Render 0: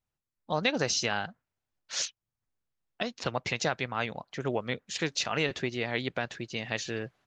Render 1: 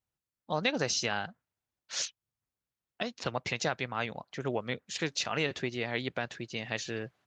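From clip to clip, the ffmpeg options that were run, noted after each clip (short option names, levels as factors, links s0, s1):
-af "highpass=44,volume=0.794"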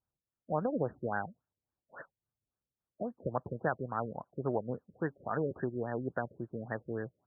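-af "afftfilt=real='re*lt(b*sr/1024,600*pow(1900/600,0.5+0.5*sin(2*PI*3.6*pts/sr)))':imag='im*lt(b*sr/1024,600*pow(1900/600,0.5+0.5*sin(2*PI*3.6*pts/sr)))':win_size=1024:overlap=0.75"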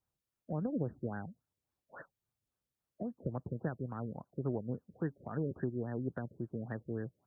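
-filter_complex "[0:a]acrossover=split=350|3000[s0][s1][s2];[s1]acompressor=threshold=0.00251:ratio=3[s3];[s0][s3][s2]amix=inputs=3:normalize=0,volume=1.26"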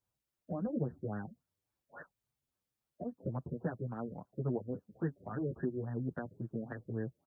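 -filter_complex "[0:a]asplit=2[s0][s1];[s1]adelay=7.8,afreqshift=1.9[s2];[s0][s2]amix=inputs=2:normalize=1,volume=1.41"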